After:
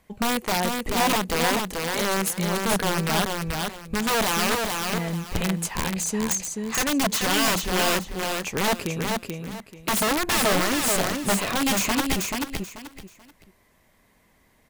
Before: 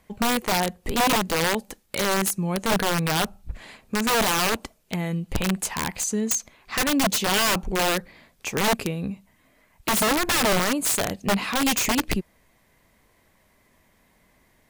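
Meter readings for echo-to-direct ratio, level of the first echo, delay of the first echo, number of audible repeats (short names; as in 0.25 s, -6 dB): -3.5 dB, -4.0 dB, 0.435 s, 3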